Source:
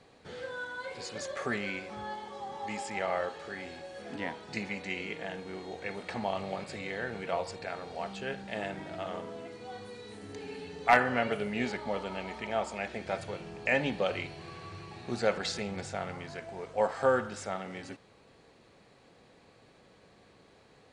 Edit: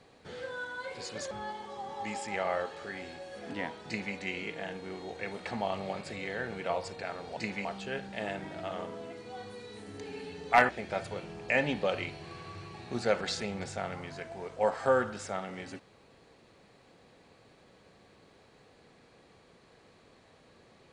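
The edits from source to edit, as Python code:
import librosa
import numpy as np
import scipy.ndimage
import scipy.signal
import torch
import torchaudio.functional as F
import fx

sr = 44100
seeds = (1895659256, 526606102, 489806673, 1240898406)

y = fx.edit(x, sr, fx.cut(start_s=1.31, length_s=0.63),
    fx.duplicate(start_s=4.5, length_s=0.28, to_s=8.0),
    fx.cut(start_s=11.04, length_s=1.82), tone=tone)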